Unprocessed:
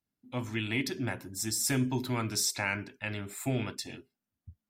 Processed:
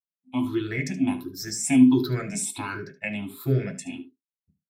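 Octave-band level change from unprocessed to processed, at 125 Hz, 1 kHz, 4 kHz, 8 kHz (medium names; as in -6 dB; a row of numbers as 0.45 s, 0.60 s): +5.5 dB, +2.5 dB, -2.5 dB, +1.5 dB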